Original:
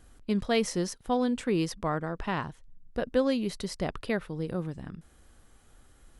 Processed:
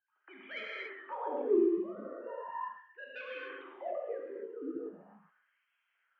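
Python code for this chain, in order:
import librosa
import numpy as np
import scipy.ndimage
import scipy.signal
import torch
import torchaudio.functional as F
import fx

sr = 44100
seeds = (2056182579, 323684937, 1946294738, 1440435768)

p1 = fx.sine_speech(x, sr)
p2 = fx.dynamic_eq(p1, sr, hz=1200.0, q=0.86, threshold_db=-42.0, ratio=4.0, max_db=4)
p3 = fx.level_steps(p2, sr, step_db=21)
p4 = p2 + (p3 * 10.0 ** (2.0 / 20.0))
p5 = 10.0 ** (-17.0 / 20.0) * np.tanh(p4 / 10.0 ** (-17.0 / 20.0))
p6 = p5 + fx.echo_wet_bandpass(p5, sr, ms=129, feedback_pct=32, hz=1200.0, wet_db=-11, dry=0)
p7 = fx.rev_gated(p6, sr, seeds[0], gate_ms=310, shape='flat', drr_db=-6.0)
p8 = fx.wah_lfo(p7, sr, hz=0.39, low_hz=270.0, high_hz=2400.0, q=2.9)
y = p8 * 10.0 ** (-8.0 / 20.0)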